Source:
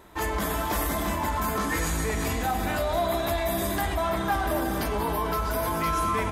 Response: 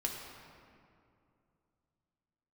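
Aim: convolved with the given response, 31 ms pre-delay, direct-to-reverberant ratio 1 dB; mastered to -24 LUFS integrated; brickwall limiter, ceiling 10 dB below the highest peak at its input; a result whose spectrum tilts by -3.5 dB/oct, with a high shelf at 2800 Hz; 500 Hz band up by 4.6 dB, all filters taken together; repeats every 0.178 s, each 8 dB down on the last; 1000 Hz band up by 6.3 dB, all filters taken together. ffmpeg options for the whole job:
-filter_complex "[0:a]equalizer=f=500:t=o:g=3.5,equalizer=f=1k:t=o:g=5.5,highshelf=f=2.8k:g=8.5,alimiter=limit=-19dB:level=0:latency=1,aecho=1:1:178|356|534|712|890:0.398|0.159|0.0637|0.0255|0.0102,asplit=2[a][b];[1:a]atrim=start_sample=2205,adelay=31[c];[b][c]afir=irnorm=-1:irlink=0,volume=-3.5dB[d];[a][d]amix=inputs=2:normalize=0"

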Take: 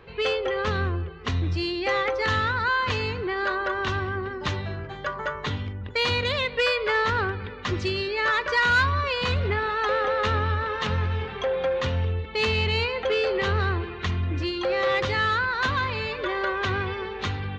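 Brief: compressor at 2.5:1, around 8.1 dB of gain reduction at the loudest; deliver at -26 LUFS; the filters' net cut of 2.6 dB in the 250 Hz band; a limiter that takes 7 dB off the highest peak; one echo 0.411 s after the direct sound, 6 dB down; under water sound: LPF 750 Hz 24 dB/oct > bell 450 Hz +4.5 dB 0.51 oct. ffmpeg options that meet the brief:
-af "equalizer=f=250:t=o:g=-6.5,acompressor=threshold=-30dB:ratio=2.5,alimiter=limit=-23dB:level=0:latency=1,lowpass=f=750:w=0.5412,lowpass=f=750:w=1.3066,equalizer=f=450:t=o:w=0.51:g=4.5,aecho=1:1:411:0.501,volume=7.5dB"

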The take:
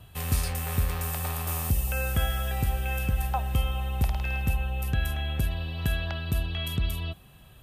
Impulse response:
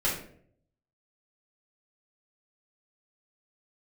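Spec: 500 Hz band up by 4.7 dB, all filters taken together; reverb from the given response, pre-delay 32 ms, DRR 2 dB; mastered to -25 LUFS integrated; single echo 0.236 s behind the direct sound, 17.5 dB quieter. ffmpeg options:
-filter_complex "[0:a]equalizer=f=500:t=o:g=5.5,aecho=1:1:236:0.133,asplit=2[a][b];[1:a]atrim=start_sample=2205,adelay=32[c];[b][c]afir=irnorm=-1:irlink=0,volume=-11.5dB[d];[a][d]amix=inputs=2:normalize=0,volume=1dB"

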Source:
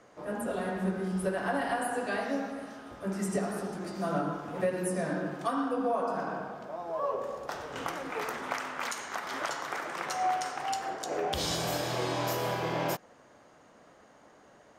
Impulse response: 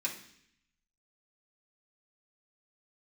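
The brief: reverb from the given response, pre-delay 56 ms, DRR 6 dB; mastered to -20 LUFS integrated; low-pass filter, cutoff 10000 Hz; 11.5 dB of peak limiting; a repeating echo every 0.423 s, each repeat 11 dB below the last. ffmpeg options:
-filter_complex "[0:a]lowpass=10k,alimiter=level_in=3dB:limit=-24dB:level=0:latency=1,volume=-3dB,aecho=1:1:423|846|1269:0.282|0.0789|0.0221,asplit=2[a][b];[1:a]atrim=start_sample=2205,adelay=56[c];[b][c]afir=irnorm=-1:irlink=0,volume=-9.5dB[d];[a][d]amix=inputs=2:normalize=0,volume=15.5dB"

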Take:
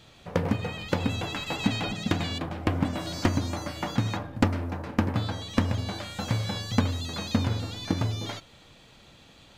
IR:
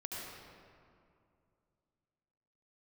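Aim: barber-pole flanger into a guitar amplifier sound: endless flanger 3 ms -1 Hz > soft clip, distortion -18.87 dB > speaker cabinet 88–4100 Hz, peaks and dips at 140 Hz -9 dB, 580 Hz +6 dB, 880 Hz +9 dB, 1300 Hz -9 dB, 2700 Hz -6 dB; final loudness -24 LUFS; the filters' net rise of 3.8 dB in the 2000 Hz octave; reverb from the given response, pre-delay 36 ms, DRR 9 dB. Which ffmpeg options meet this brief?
-filter_complex "[0:a]equalizer=f=2k:t=o:g=8,asplit=2[a][b];[1:a]atrim=start_sample=2205,adelay=36[c];[b][c]afir=irnorm=-1:irlink=0,volume=-9.5dB[d];[a][d]amix=inputs=2:normalize=0,asplit=2[e][f];[f]adelay=3,afreqshift=-1[g];[e][g]amix=inputs=2:normalize=1,asoftclip=threshold=-15.5dB,highpass=88,equalizer=f=140:t=q:w=4:g=-9,equalizer=f=580:t=q:w=4:g=6,equalizer=f=880:t=q:w=4:g=9,equalizer=f=1.3k:t=q:w=4:g=-9,equalizer=f=2.7k:t=q:w=4:g=-6,lowpass=f=4.1k:w=0.5412,lowpass=f=4.1k:w=1.3066,volume=8dB"

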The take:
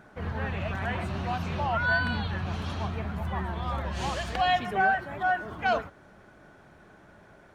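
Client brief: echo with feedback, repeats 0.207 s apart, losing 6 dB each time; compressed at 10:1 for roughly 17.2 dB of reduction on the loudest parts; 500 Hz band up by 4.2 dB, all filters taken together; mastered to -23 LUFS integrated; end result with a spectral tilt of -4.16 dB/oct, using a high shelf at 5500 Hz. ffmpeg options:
-af "equalizer=f=500:t=o:g=6,highshelf=f=5.5k:g=8.5,acompressor=threshold=-36dB:ratio=10,aecho=1:1:207|414|621|828|1035|1242:0.501|0.251|0.125|0.0626|0.0313|0.0157,volume=16dB"

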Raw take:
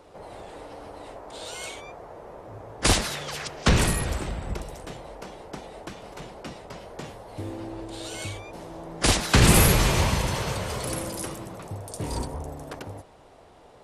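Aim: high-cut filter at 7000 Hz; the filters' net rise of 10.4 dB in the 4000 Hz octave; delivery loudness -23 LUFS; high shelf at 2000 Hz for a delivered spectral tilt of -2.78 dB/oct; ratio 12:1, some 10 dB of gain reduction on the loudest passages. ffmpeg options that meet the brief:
-af "lowpass=7k,highshelf=f=2k:g=5,equalizer=f=4k:t=o:g=8.5,acompressor=threshold=-20dB:ratio=12,volume=5dB"

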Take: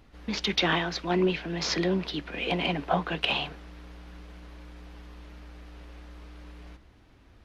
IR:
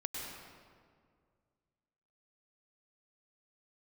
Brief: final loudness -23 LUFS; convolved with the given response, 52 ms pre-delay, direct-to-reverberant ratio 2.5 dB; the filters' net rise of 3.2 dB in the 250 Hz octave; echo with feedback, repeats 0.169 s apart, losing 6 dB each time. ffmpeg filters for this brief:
-filter_complex "[0:a]equalizer=f=250:t=o:g=5.5,aecho=1:1:169|338|507|676|845|1014:0.501|0.251|0.125|0.0626|0.0313|0.0157,asplit=2[a][b];[1:a]atrim=start_sample=2205,adelay=52[c];[b][c]afir=irnorm=-1:irlink=0,volume=-4dB[d];[a][d]amix=inputs=2:normalize=0,volume=1dB"

